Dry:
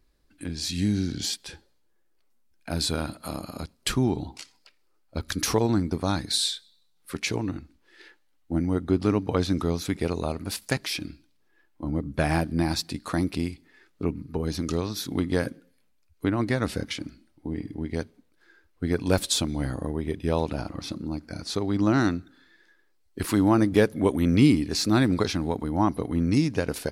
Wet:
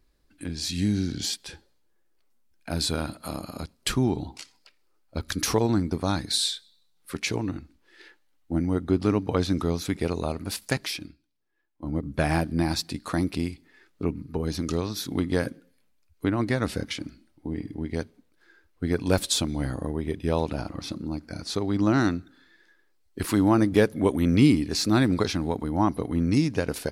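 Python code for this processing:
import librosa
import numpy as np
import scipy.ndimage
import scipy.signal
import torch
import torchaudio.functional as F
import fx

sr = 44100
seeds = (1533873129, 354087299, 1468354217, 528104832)

y = fx.upward_expand(x, sr, threshold_db=-49.0, expansion=1.5, at=(10.91, 12.03))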